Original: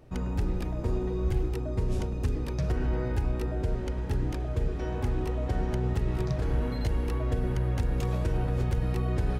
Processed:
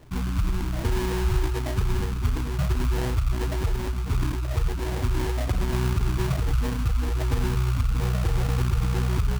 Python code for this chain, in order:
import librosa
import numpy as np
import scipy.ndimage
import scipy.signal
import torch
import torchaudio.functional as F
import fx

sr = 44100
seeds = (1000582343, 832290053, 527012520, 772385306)

y = fx.spec_gate(x, sr, threshold_db=-15, keep='strong')
y = fx.sample_hold(y, sr, seeds[0], rate_hz=1300.0, jitter_pct=20)
y = y * 10.0 ** (4.5 / 20.0)